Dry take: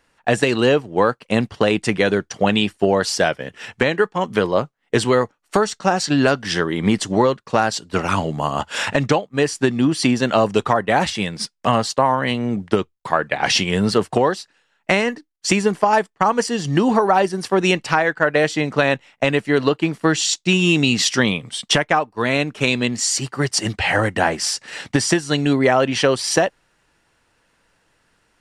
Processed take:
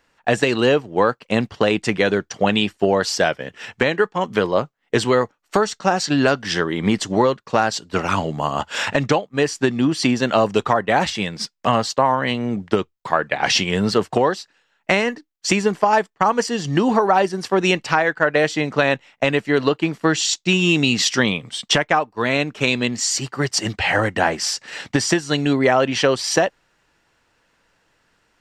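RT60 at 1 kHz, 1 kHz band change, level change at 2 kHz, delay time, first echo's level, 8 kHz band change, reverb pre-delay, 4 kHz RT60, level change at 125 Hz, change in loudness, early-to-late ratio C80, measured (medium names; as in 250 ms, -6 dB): no reverb, 0.0 dB, 0.0 dB, no echo, no echo, -1.0 dB, no reverb, no reverb, -2.0 dB, -0.5 dB, no reverb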